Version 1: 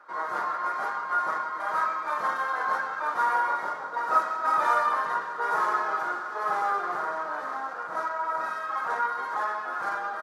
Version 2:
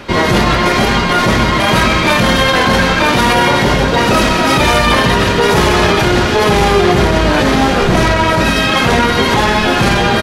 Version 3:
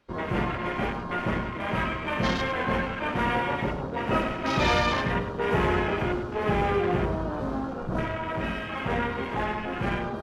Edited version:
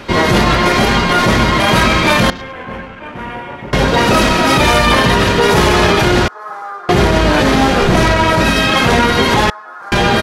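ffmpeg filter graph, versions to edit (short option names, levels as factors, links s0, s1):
-filter_complex "[0:a]asplit=2[s0][s1];[1:a]asplit=4[s2][s3][s4][s5];[s2]atrim=end=2.302[s6];[2:a]atrim=start=2.298:end=3.732[s7];[s3]atrim=start=3.728:end=6.282[s8];[s0]atrim=start=6.278:end=6.892[s9];[s4]atrim=start=6.888:end=9.502[s10];[s1]atrim=start=9.498:end=9.922[s11];[s5]atrim=start=9.918[s12];[s6][s7]acrossfade=d=0.004:c1=hsin:c2=hsin[s13];[s13][s8]acrossfade=d=0.004:c1=hsin:c2=hsin[s14];[s14][s9]acrossfade=d=0.004:c1=hsin:c2=hsin[s15];[s15][s10]acrossfade=d=0.004:c1=hsin:c2=hsin[s16];[s16][s11]acrossfade=d=0.004:c1=hsin:c2=hsin[s17];[s17][s12]acrossfade=d=0.004:c1=hsin:c2=hsin"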